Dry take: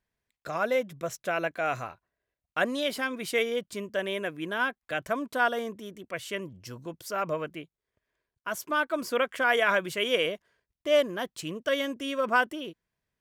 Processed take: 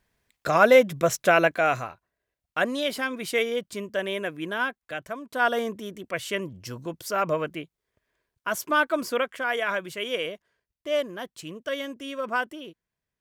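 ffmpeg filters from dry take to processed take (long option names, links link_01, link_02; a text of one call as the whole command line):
ffmpeg -i in.wav -af "volume=23dB,afade=type=out:start_time=1.28:duration=0.6:silence=0.354813,afade=type=out:start_time=4.49:duration=0.75:silence=0.354813,afade=type=in:start_time=5.24:duration=0.31:silence=0.251189,afade=type=out:start_time=8.86:duration=0.52:silence=0.398107" out.wav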